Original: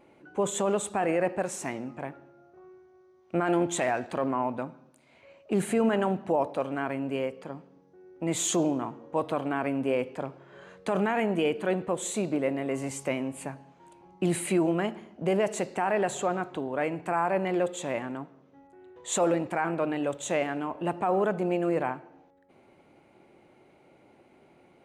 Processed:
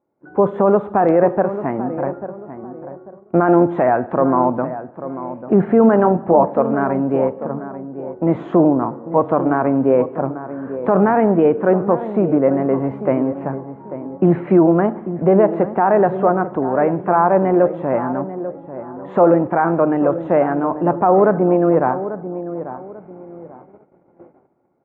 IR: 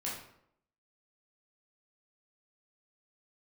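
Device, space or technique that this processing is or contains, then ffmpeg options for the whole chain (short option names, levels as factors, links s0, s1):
action camera in a waterproof case: -filter_complex "[0:a]highpass=63,asettb=1/sr,asplit=3[s0][s1][s2];[s0]atrim=end=6.024[s3];[s1]atrim=start=6.02:end=6.45,asetpts=PTS-STARTPTS,afade=t=in:d=0.004:c=qsin,afade=t=out:st=0.426:d=0.004:c=qsin,asplit=2[s4][s5];[s5]adelay=23,volume=0.398[s6];[s4][s6]amix=inputs=2:normalize=0,atrim=end_sample=18963[s7];[s2]atrim=start=6.446[s8];[s3][s7]acrossfade=d=0.004:c1=hsin:c2=qsin[s9];[s9][s8]acrossfade=d=0.004:c1=qsin:c2=hsin,asplit=2[s10][s11];[s11]adelay=842,lowpass=f=1200:p=1,volume=0.266,asplit=2[s12][s13];[s13]adelay=842,lowpass=f=1200:p=1,volume=0.32,asplit=2[s14][s15];[s15]adelay=842,lowpass=f=1200:p=1,volume=0.32[s16];[s10][s12][s14][s16]amix=inputs=4:normalize=0,agate=range=0.1:threshold=0.002:ratio=16:detection=peak,lowpass=f=1400:w=0.5412,lowpass=f=1400:w=1.3066,dynaudnorm=f=160:g=3:m=2.66,volume=1.68" -ar 44100 -c:a aac -b:a 64k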